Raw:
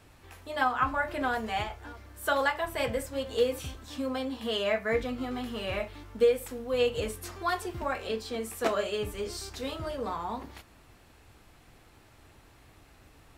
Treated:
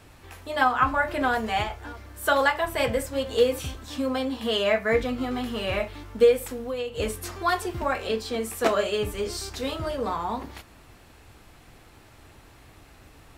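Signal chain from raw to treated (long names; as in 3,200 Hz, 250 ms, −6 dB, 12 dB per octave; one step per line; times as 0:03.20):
0:06.47–0:07.00: downward compressor 6 to 1, threshold −34 dBFS, peak gain reduction 12 dB
level +5.5 dB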